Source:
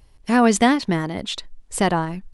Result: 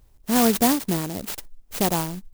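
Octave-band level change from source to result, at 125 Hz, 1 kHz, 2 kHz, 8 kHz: -3.0 dB, -5.0 dB, -8.0 dB, +1.5 dB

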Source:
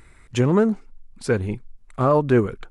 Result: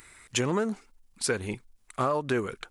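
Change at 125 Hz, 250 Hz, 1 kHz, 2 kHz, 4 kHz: -12.5 dB, -10.5 dB, -5.5 dB, -2.5 dB, +4.0 dB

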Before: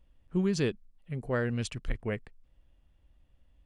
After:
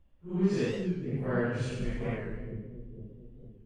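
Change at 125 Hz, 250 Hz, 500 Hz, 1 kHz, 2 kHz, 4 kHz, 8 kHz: +1.5 dB, +1.5 dB, +1.0 dB, +1.0 dB, -1.0 dB, -3.5 dB, -6.5 dB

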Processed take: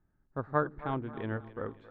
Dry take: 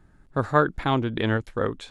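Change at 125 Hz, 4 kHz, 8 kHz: -11.0 dB, -22.5 dB, no reading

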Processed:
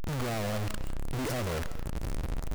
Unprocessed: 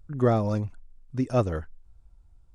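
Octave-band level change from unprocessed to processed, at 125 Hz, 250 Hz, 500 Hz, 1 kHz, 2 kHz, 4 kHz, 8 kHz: -5.5 dB, -7.5 dB, -8.5 dB, -5.0 dB, +5.0 dB, +10.0 dB, no reading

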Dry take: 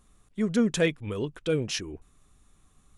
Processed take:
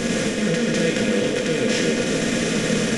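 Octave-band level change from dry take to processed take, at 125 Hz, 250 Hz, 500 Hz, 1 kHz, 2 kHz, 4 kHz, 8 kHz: +7.5 dB, +8.5 dB, +9.0 dB, +13.5 dB, +12.5 dB, +11.5 dB, +13.0 dB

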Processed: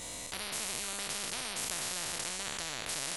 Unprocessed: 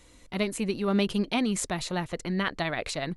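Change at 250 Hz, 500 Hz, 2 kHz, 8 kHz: -22.5 dB, -15.5 dB, -6.0 dB, +4.0 dB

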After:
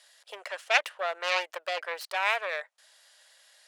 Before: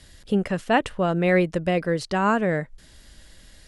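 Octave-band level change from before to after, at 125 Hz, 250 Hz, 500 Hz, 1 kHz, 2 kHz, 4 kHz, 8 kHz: under -40 dB, under -35 dB, -11.5 dB, -6.0 dB, -1.0 dB, +3.0 dB, -0.5 dB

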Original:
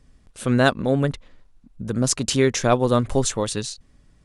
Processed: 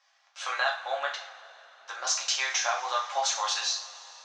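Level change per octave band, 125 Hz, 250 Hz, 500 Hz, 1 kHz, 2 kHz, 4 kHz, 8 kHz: under -40 dB, under -40 dB, -15.5 dB, -2.5 dB, -2.0 dB, +0.5 dB, -3.0 dB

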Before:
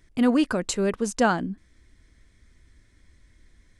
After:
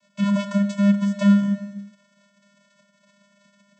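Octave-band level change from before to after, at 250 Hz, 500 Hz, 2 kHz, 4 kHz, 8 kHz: +6.0 dB, -6.0 dB, -5.0 dB, -3.0 dB, under -10 dB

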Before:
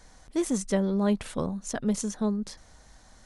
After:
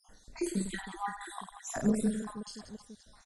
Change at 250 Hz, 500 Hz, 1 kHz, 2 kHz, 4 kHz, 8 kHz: -6.5 dB, -9.0 dB, -0.5 dB, -1.0 dB, -4.5 dB, -6.0 dB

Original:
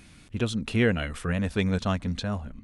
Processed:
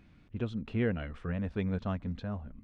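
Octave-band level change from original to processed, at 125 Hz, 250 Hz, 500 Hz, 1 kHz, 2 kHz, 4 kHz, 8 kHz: -6.5 dB, -6.5 dB, -7.5 dB, -9.0 dB, -11.5 dB, -16.5 dB, under -25 dB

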